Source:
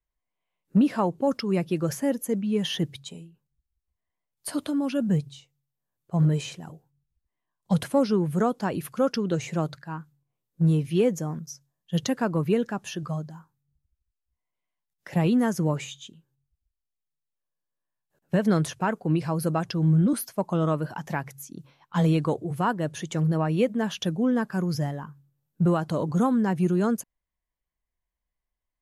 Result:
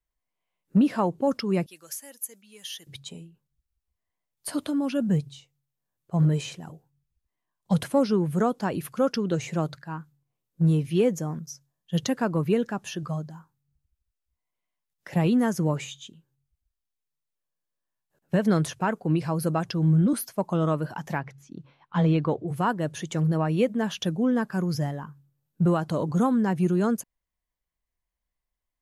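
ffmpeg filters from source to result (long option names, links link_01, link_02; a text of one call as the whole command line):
ffmpeg -i in.wav -filter_complex "[0:a]asettb=1/sr,asplit=3[link_01][link_02][link_03];[link_01]atrim=end=1.664[link_04];[link_02]atrim=start=1.66:end=2.87,asetpts=PTS-STARTPTS,afade=type=in:duration=0.004:curve=qsin,afade=type=out:start_time=1.206:duration=0.004:curve=qsin,aderivative[link_05];[link_03]atrim=start=2.866[link_06];[link_04][link_05]acrossfade=duration=0.004:curve1=hsin:curve2=qsin[link_07];[link_07][link_06]acrossfade=duration=0.004:curve1=qsin:curve2=hsin,asettb=1/sr,asplit=3[link_08][link_09][link_10];[link_08]atrim=end=21.184[link_11];[link_09]atrim=start=21.18:end=22.48,asetpts=PTS-STARTPTS,afade=type=in:duration=0.004:curve=qsin,afade=type=out:start_time=1.296:duration=0.004:curve=qsin,lowpass=3500[link_12];[link_10]atrim=start=22.476[link_13];[link_11][link_12]acrossfade=duration=0.004:curve1=hsin:curve2=qsin[link_14];[link_14][link_13]acrossfade=duration=0.004:curve1=qsin:curve2=hsin" out.wav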